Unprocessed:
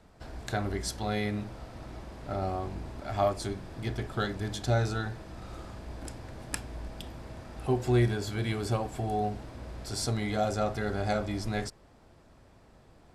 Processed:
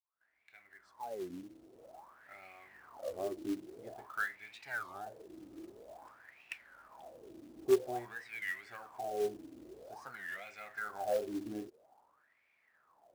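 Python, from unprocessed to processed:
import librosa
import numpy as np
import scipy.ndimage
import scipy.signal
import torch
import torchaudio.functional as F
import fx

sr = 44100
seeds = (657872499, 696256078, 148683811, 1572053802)

p1 = fx.fade_in_head(x, sr, length_s=2.6)
p2 = fx.wah_lfo(p1, sr, hz=0.5, low_hz=300.0, high_hz=2300.0, q=11.0)
p3 = np.clip(p2, -10.0 ** (-34.0 / 20.0), 10.0 ** (-34.0 / 20.0))
p4 = p2 + (p3 * 10.0 ** (-11.5 / 20.0))
p5 = fx.quant_float(p4, sr, bits=2)
p6 = fx.record_warp(p5, sr, rpm=33.33, depth_cents=250.0)
y = p6 * 10.0 ** (4.5 / 20.0)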